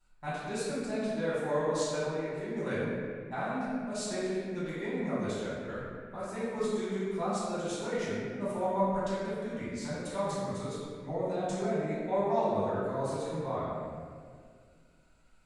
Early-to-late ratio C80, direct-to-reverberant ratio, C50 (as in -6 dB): -1.0 dB, -12.5 dB, -3.0 dB